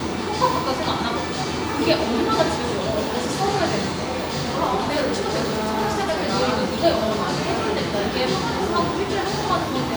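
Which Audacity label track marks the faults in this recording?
4.760000	6.270000	clipping −18 dBFS

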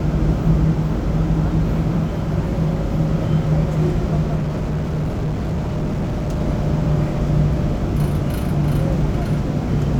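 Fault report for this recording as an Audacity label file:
4.350000	6.410000	clipping −18 dBFS

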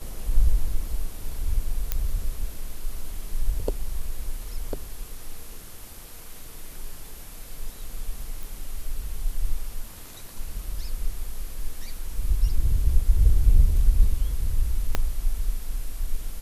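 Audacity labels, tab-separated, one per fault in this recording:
1.920000	1.920000	click −10 dBFS
8.430000	8.430000	click
14.950000	14.950000	click −8 dBFS

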